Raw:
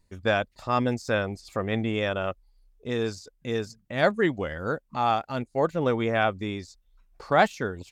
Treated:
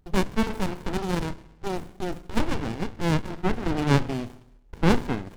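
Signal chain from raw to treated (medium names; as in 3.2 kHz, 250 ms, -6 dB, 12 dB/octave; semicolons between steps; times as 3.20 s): gliding tape speed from 187% -> 108%; Schroeder reverb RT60 0.77 s, combs from 25 ms, DRR 12 dB; sliding maximum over 65 samples; trim +4.5 dB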